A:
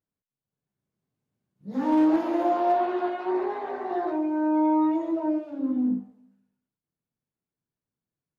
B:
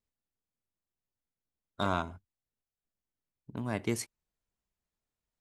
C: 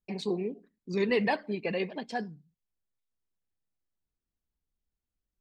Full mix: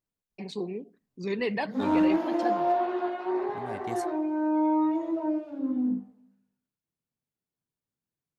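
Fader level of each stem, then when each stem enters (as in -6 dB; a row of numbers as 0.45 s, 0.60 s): -2.5 dB, -7.0 dB, -2.5 dB; 0.00 s, 0.00 s, 0.30 s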